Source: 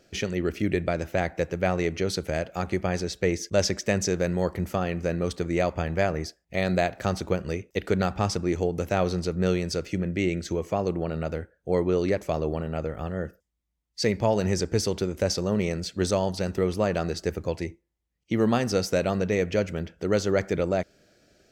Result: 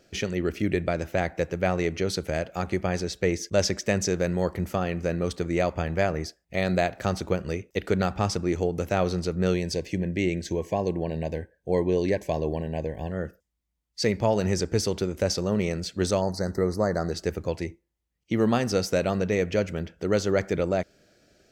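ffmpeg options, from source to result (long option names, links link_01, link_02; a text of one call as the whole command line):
ffmpeg -i in.wav -filter_complex "[0:a]asettb=1/sr,asplit=3[link_01][link_02][link_03];[link_01]atrim=end=9.544[link_04];[link_02]atrim=start=9.54:end=13.12,asetpts=PTS-STARTPTS,afade=type=in:duration=0.004:curve=qsin,afade=type=out:start_time=3.576:duration=0.004:curve=qsin,asuperstop=centerf=1300:order=20:qfactor=3.2[link_05];[link_03]atrim=start=13.116[link_06];[link_04][link_05]acrossfade=duration=0.004:curve1=hsin:curve2=qsin[link_07];[link_07][link_06]acrossfade=duration=0.004:curve1=qsin:curve2=hsin,asplit=3[link_08][link_09][link_10];[link_08]afade=type=out:start_time=16.2:duration=0.02[link_11];[link_09]asuperstop=centerf=2900:order=12:qfactor=1.5,afade=type=in:start_time=16.2:duration=0.02,afade=type=out:start_time=17.11:duration=0.02[link_12];[link_10]afade=type=in:start_time=17.11:duration=0.02[link_13];[link_11][link_12][link_13]amix=inputs=3:normalize=0" out.wav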